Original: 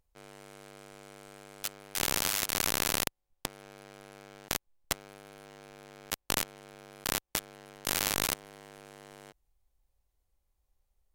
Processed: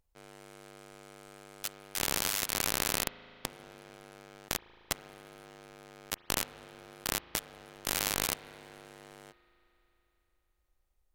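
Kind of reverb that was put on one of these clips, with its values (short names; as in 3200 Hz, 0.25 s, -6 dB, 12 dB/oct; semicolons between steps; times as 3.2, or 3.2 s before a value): spring tank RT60 3.5 s, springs 37 ms, chirp 35 ms, DRR 16 dB; gain -1.5 dB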